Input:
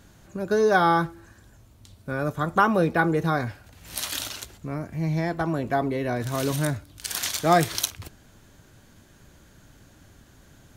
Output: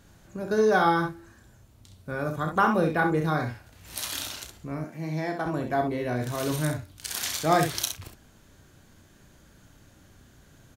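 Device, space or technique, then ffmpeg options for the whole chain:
slapback doubling: -filter_complex "[0:a]asplit=3[link_01][link_02][link_03];[link_02]adelay=32,volume=-8dB[link_04];[link_03]adelay=65,volume=-7dB[link_05];[link_01][link_04][link_05]amix=inputs=3:normalize=0,asettb=1/sr,asplit=3[link_06][link_07][link_08];[link_06]atrim=end=4.844[link_09];[link_07]atrim=start=4.84:end=5.46,asetpts=PTS-STARTPTS,afade=type=in:duration=0.004:curve=qsin,afade=type=out:start_time=0.616:duration=0.004:curve=qsin,highpass=frequency=180:width=0.5412,highpass=frequency=180:width=1.3066[link_10];[link_08]atrim=start=5.456[link_11];[link_09][link_10]acrossfade=duration=0.004:curve1=hsin:curve2=qsin[link_12];[link_12][link_11]acrossfade=duration=0.004:curve1=qsin:curve2=hsin,volume=-3.5dB"

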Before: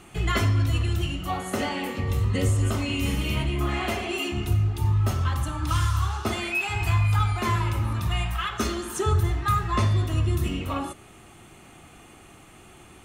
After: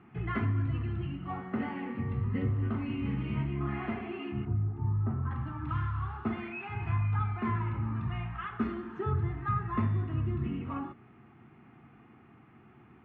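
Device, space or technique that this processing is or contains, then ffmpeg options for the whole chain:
bass cabinet: -filter_complex "[0:a]asettb=1/sr,asplit=3[link_01][link_02][link_03];[link_01]atrim=end=4.454[link_04];[link_02]atrim=start=4.45:end=5.31,asetpts=PTS-STARTPTS,afade=type=in:duration=0.004:curve=qsin,afade=type=out:start_time=0.856:duration=0.004:curve=qsin,lowpass=1200[link_05];[link_03]atrim=start=5.306[link_06];[link_04][link_05]acrossfade=duration=0.004:curve1=hsin:curve2=qsin[link_07];[link_07][link_06]acrossfade=duration=0.004:curve1=qsin:curve2=hsin,highpass=87,equalizer=frequency=130:width_type=q:width=4:gain=8,equalizer=frequency=230:width_type=q:width=4:gain=9,equalizer=frequency=580:width_type=q:width=4:gain=-10,lowpass=frequency=2100:width=0.5412,lowpass=frequency=2100:width=1.3066,volume=-8dB"

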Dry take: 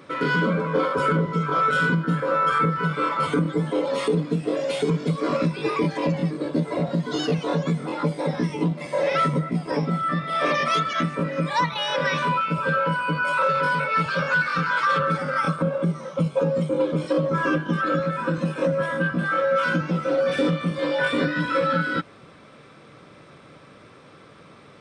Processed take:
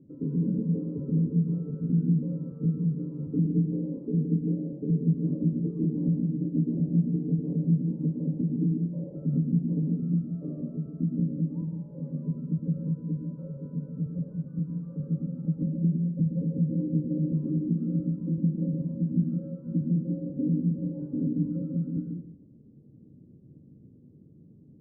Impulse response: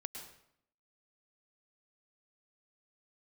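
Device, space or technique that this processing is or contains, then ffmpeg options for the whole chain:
next room: -filter_complex "[0:a]lowpass=frequency=280:width=0.5412,lowpass=frequency=280:width=1.3066[link_01];[1:a]atrim=start_sample=2205[link_02];[link_01][link_02]afir=irnorm=-1:irlink=0,volume=2.5dB"

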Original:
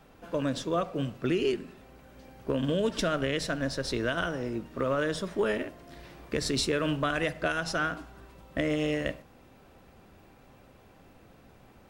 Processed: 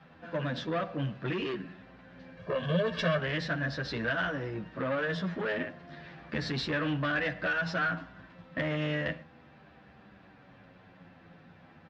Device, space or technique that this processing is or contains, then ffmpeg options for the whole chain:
barber-pole flanger into a guitar amplifier: -filter_complex "[0:a]asplit=2[link_01][link_02];[link_02]adelay=9.4,afreqshift=-0.34[link_03];[link_01][link_03]amix=inputs=2:normalize=1,asoftclip=type=tanh:threshold=-29dB,highpass=85,equalizer=frequency=170:width_type=q:width=4:gain=7,equalizer=frequency=400:width_type=q:width=4:gain=-6,equalizer=frequency=1700:width_type=q:width=4:gain=8,lowpass=frequency=4400:width=0.5412,lowpass=frequency=4400:width=1.3066,asettb=1/sr,asplit=3[link_04][link_05][link_06];[link_04]atrim=end=2.374[link_07];[link_05]atrim=start=2.37:end=3.19,asetpts=PTS-STARTPTS,afade=type=in:duration=0.004:curve=qsin,afade=type=out:start_time=0.816:duration=0.004:curve=qsin,aecho=1:1:1.8:0.92,atrim=end_sample=36162[link_08];[link_06]atrim=start=3.186[link_09];[link_07][link_08]acrossfade=duration=0.004:curve1=hsin:curve2=qsin[link_10];[link_10][link_09]acrossfade=duration=0.004:curve1=qsin:curve2=hsin,volume=3dB"

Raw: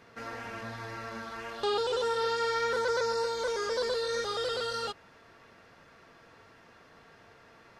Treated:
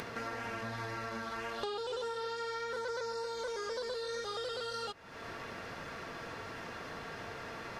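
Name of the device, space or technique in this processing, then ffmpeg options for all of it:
upward and downward compression: -af "acompressor=mode=upward:threshold=-43dB:ratio=2.5,acompressor=threshold=-44dB:ratio=6,volume=7dB"

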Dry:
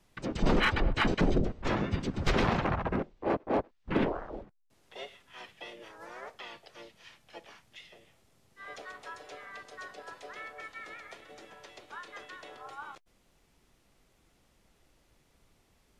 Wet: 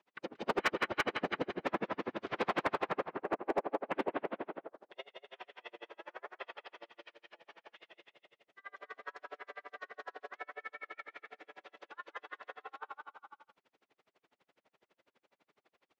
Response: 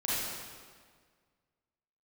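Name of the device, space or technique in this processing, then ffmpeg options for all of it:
helicopter radio: -af "highpass=380,lowpass=2900,aecho=1:1:180|324|439.2|531.4|605.1:0.631|0.398|0.251|0.158|0.1,aeval=exprs='val(0)*pow(10,-39*(0.5-0.5*cos(2*PI*12*n/s))/20)':channel_layout=same,asoftclip=type=hard:threshold=-26.5dB,volume=3dB"

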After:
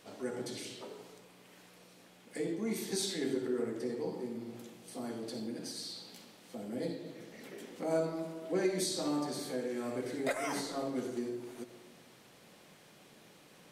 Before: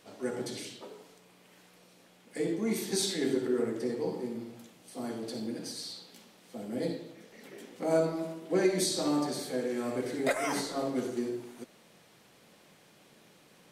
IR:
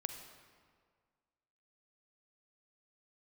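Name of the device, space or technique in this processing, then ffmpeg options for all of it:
ducked reverb: -filter_complex "[0:a]asplit=3[link_01][link_02][link_03];[1:a]atrim=start_sample=2205[link_04];[link_02][link_04]afir=irnorm=-1:irlink=0[link_05];[link_03]apad=whole_len=604743[link_06];[link_05][link_06]sidechaincompress=threshold=-46dB:ratio=8:attack=47:release=144,volume=2.5dB[link_07];[link_01][link_07]amix=inputs=2:normalize=0,volume=-6dB"

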